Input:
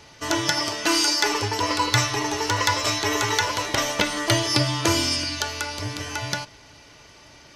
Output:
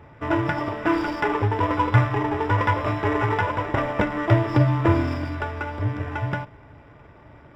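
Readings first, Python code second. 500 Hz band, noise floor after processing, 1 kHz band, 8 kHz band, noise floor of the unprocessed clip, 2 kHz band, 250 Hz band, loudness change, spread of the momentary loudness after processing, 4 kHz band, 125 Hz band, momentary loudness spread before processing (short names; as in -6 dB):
+2.5 dB, -49 dBFS, +1.5 dB, under -25 dB, -49 dBFS, -2.5 dB, +3.5 dB, -1.0 dB, 9 LU, -18.0 dB, +7.5 dB, 9 LU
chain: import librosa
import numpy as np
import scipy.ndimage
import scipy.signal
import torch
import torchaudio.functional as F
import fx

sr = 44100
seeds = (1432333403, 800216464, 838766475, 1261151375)

y = scipy.signal.medfilt(x, 15)
y = scipy.signal.savgol_filter(y, 25, 4, mode='constant')
y = fx.peak_eq(y, sr, hz=96.0, db=5.5, octaves=1.9)
y = y * librosa.db_to_amplitude(2.5)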